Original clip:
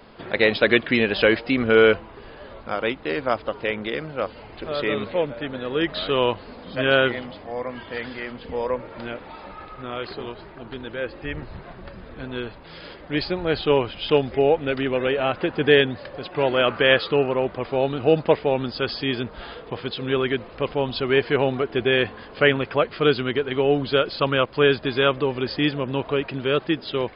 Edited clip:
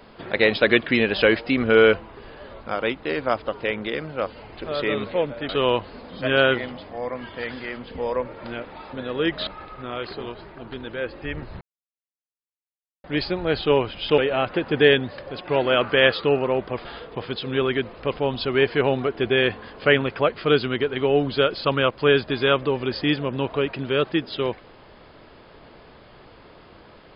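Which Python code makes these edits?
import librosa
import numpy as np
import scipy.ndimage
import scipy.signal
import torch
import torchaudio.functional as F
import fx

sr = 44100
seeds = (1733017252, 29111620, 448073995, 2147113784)

y = fx.edit(x, sr, fx.move(start_s=5.49, length_s=0.54, to_s=9.47),
    fx.silence(start_s=11.61, length_s=1.43),
    fx.cut(start_s=14.18, length_s=0.87),
    fx.cut(start_s=17.72, length_s=1.68), tone=tone)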